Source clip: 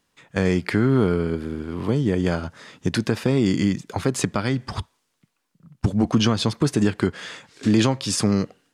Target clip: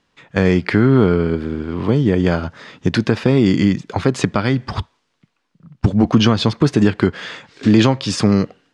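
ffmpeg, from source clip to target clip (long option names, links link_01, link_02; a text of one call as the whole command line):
ffmpeg -i in.wav -af "lowpass=4700,volume=6dB" out.wav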